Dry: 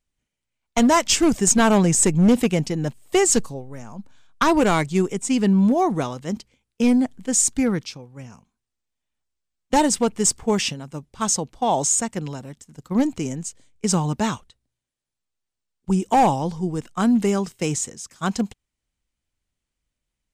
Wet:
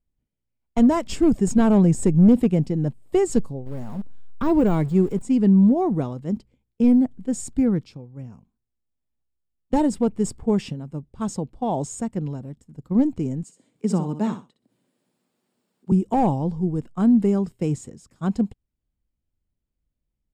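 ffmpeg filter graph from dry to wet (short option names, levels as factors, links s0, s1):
-filter_complex "[0:a]asettb=1/sr,asplit=3[s0][s1][s2];[s0]atrim=end=3.664[s3];[s1]atrim=start=3.66:end=5.22,asetpts=PTS-STARTPTS,afade=t=in:d=0.004:c=qsin,afade=t=out:st=1.556:d=0.004:c=qsin,aeval=exprs='val(0)+0.5*0.0282*sgn(val(0))':c=same,deesser=0.6[s4];[s2]atrim=start=5.216[s5];[s3][s4]acrossfade=d=0.004:c1=hsin:c2=qsin[s6];[s6][s5]acrossfade=d=0.004:c1=qsin:c2=hsin,asettb=1/sr,asplit=3[s7][s8][s9];[s7]atrim=end=13.434[s10];[s8]atrim=start=13.43:end=15.92,asetpts=PTS-STARTPTS,afade=t=in:d=0.004:c=qsin,afade=t=out:st=2.486:d=0.004:c=qsin,highpass=f=180:w=0.5412,highpass=f=180:w=1.3066,acompressor=mode=upward:threshold=0.00631:ratio=2.5:attack=3.2:release=140:knee=2.83:detection=peak,aecho=1:1:62|124:0.316|0.0538,atrim=end_sample=109809[s11];[s9]atrim=start=15.916[s12];[s10][s11]acrossfade=d=0.004:c1=hsin:c2=qsin[s13];[s13][s12]acrossfade=d=0.004:c1=qsin:c2=hsin,tiltshelf=f=770:g=9.5,bandreject=f=6100:w=6.7,volume=0.501"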